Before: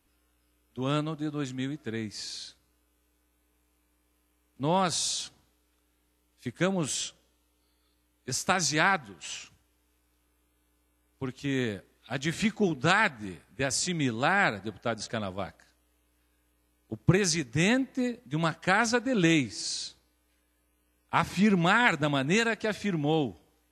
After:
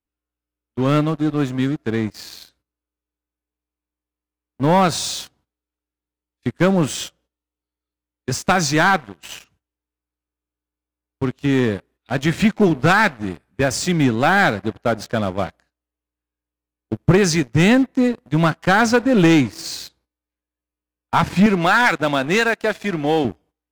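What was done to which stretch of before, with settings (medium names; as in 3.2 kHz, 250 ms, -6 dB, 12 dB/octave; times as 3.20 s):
21.46–23.25 s: high-pass 460 Hz 6 dB/octave
whole clip: gate -58 dBFS, range -13 dB; treble shelf 3.2 kHz -10.5 dB; waveshaping leveller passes 3; trim +2 dB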